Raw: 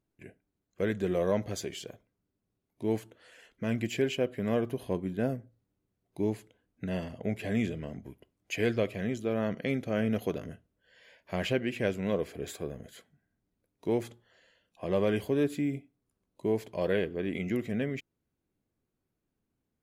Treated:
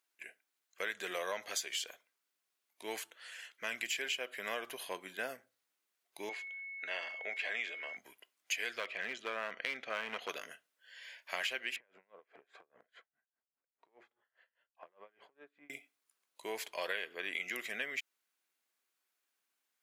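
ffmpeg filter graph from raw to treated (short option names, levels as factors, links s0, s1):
-filter_complex "[0:a]asettb=1/sr,asplit=3[s0][s1][s2];[s0]atrim=end=6.294[s3];[s1]atrim=start=6.29:end=7.97,asetpts=PTS-STARTPTS,afade=t=in:d=0.004:c=qsin,afade=t=out:st=1.676:d=0.004:c=qsin,aeval=exprs='val(0)+0.00316*sin(2*PI*2200*n/s)':c=same,highpass=390,lowpass=3900[s4];[s2]atrim=start=7.966[s5];[s3][s4]acrossfade=d=0.004:c1=hsin:c2=qsin[s6];[s6][s5]acrossfade=d=0.004:c1=qsin:c2=hsin,asettb=1/sr,asplit=3[s7][s8][s9];[s7]atrim=end=8.794[s10];[s8]atrim=start=8.79:end=10.29,asetpts=PTS-STARTPTS,afade=t=in:d=0.004:c=qsin,afade=t=out:st=1.496:d=0.004:c=qsin,lowpass=3200,asoftclip=type=hard:threshold=0.0668[s11];[s9]atrim=start=10.286[s12];[s10][s11]acrossfade=d=0.004:c1=hsin:c2=qsin[s13];[s13][s12]acrossfade=d=0.004:c1=qsin:c2=hsin,asettb=1/sr,asplit=3[s14][s15][s16];[s14]atrim=end=11.764[s17];[s15]atrim=start=11.76:end=15.7,asetpts=PTS-STARTPTS,afade=t=in:d=0.004:c=qsin,afade=t=out:st=3.936:d=0.004:c=qsin,lowpass=1300,acompressor=threshold=0.01:ratio=6:attack=3.2:release=140:knee=1:detection=peak,aeval=exprs='val(0)*pow(10,-27*(0.5-0.5*cos(2*PI*4.9*n/s))/20)':c=same[s18];[s16]atrim=start=15.696[s19];[s17][s18]acrossfade=d=0.004:c1=hsin:c2=qsin[s20];[s20][s19]acrossfade=d=0.004:c1=qsin:c2=hsin,highpass=1400,acompressor=threshold=0.00794:ratio=6,volume=2.66"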